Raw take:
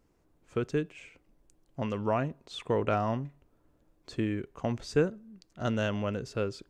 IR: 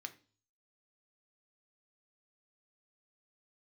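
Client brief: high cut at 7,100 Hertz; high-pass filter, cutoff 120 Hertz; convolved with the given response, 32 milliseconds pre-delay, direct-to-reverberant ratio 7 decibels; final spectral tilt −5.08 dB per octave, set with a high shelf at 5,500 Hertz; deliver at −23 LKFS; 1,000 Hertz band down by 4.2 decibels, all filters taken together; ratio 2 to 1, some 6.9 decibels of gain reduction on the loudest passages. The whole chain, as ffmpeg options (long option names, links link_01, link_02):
-filter_complex "[0:a]highpass=120,lowpass=7100,equalizer=frequency=1000:width_type=o:gain=-6.5,highshelf=frequency=5500:gain=7,acompressor=threshold=-33dB:ratio=2,asplit=2[link_01][link_02];[1:a]atrim=start_sample=2205,adelay=32[link_03];[link_02][link_03]afir=irnorm=-1:irlink=0,volume=-4dB[link_04];[link_01][link_04]amix=inputs=2:normalize=0,volume=14.5dB"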